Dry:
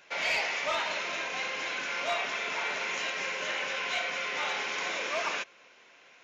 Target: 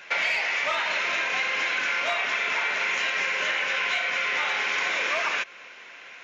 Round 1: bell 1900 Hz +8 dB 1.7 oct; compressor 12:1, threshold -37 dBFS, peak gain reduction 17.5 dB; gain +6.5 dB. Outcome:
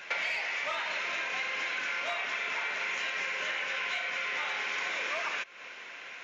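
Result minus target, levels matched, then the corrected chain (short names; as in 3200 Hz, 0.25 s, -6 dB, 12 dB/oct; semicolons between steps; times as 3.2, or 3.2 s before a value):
compressor: peak gain reduction +7.5 dB
bell 1900 Hz +8 dB 1.7 oct; compressor 12:1, threshold -29 dBFS, peak gain reduction 10 dB; gain +6.5 dB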